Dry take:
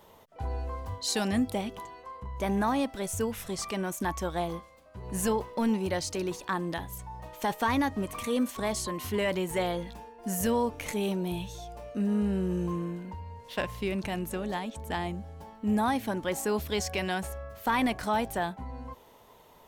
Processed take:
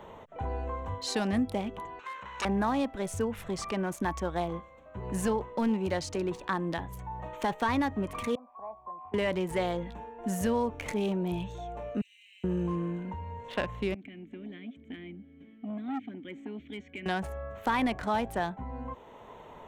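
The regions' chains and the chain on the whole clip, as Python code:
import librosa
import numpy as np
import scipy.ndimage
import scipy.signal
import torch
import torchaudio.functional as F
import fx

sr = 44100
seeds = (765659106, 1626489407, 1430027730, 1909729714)

y = fx.chain(x, sr, fx.lower_of_two(delay_ms=0.74),
    fx.weighting(curve='ITU-R 468'), at=(1.99, 2.45))
y = fx.chain(y, sr, fx.formant_cascade(vowel='a'),
    fx.low_shelf(hz=400.0, db=-5.0),
    fx.band_squash(depth_pct=40), at=(8.35, 9.14))
y = fx.chain(y, sr, fx.steep_highpass(hz=2100.0, slope=96),
    fx.resample_bad(factor=2, down='filtered', up='hold'), at=(12.01, 12.44))
y = fx.chain(y, sr, fx.vowel_filter(vowel='i'),
    fx.transformer_sat(knee_hz=760.0), at=(13.94, 17.06))
y = fx.wiener(y, sr, points=9)
y = fx.peak_eq(y, sr, hz=14000.0, db=-10.0, octaves=0.73)
y = fx.band_squash(y, sr, depth_pct=40)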